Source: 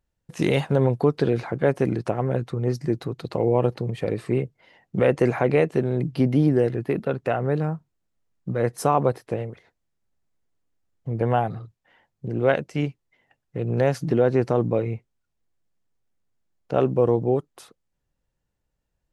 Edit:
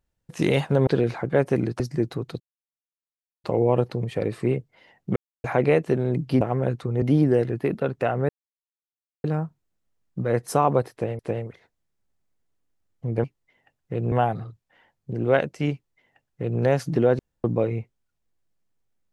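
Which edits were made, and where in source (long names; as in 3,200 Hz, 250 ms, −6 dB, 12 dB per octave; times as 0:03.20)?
0:00.87–0:01.16: remove
0:02.09–0:02.70: move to 0:06.27
0:03.30: splice in silence 1.04 s
0:05.02–0:05.30: silence
0:07.54: splice in silence 0.95 s
0:09.22–0:09.49: repeat, 2 plays
0:12.88–0:13.76: duplicate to 0:11.27
0:14.34–0:14.59: fill with room tone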